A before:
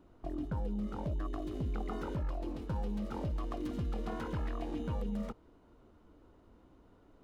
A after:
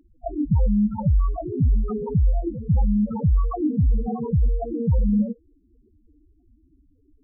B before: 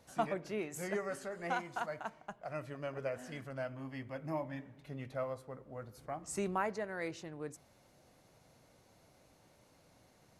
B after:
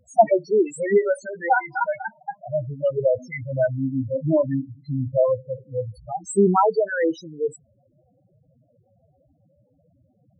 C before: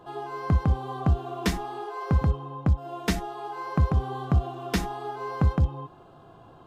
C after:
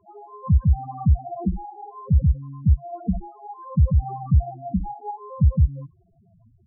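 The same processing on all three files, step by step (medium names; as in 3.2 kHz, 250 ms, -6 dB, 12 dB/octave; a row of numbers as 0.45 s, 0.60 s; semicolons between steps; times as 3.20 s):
spectral noise reduction 11 dB; loudest bins only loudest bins 4; normalise loudness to -23 LUFS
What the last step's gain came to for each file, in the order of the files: +18.0 dB, +22.0 dB, +5.5 dB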